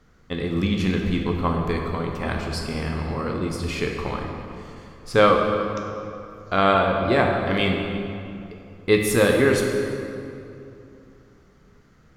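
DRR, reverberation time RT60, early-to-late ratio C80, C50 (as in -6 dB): 0.5 dB, 2.7 s, 4.0 dB, 2.5 dB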